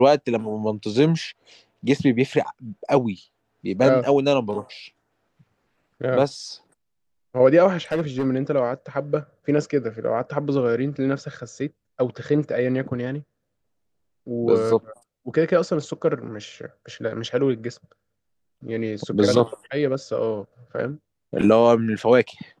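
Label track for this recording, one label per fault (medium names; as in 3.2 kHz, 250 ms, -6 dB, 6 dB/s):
7.920000	8.260000	clipped -18 dBFS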